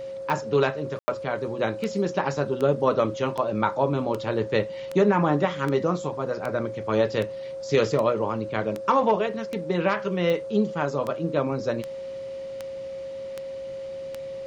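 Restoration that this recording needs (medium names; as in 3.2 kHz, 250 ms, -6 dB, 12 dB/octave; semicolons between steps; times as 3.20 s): de-click; band-stop 540 Hz, Q 30; room tone fill 0.99–1.08 s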